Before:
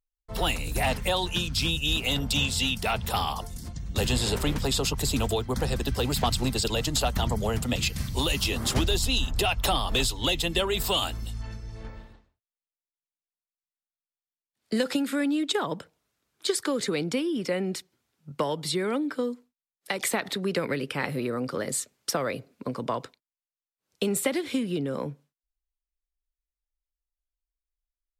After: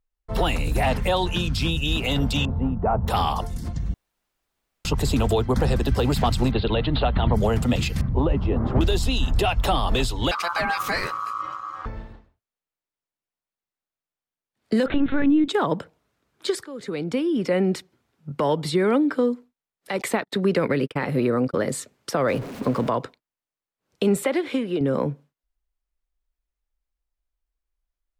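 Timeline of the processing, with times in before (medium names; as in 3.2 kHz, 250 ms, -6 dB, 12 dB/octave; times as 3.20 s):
2.45–3.08 s: low-pass 1.1 kHz 24 dB/octave
3.94–4.85 s: room tone
6.51–7.34 s: steep low-pass 4.1 kHz 72 dB/octave
8.01–8.81 s: low-pass 1 kHz
10.31–11.86 s: ring modulator 1.2 kHz
14.86–15.48 s: LPC vocoder at 8 kHz pitch kept
16.65–17.59 s: fade in, from -23 dB
20.02–21.54 s: gate -34 dBFS, range -53 dB
22.28–22.90 s: jump at every zero crossing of -37.5 dBFS
24.24–24.81 s: tone controls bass -13 dB, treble -6 dB
whole clip: peak limiter -19.5 dBFS; treble shelf 3 kHz -12 dB; trim +8.5 dB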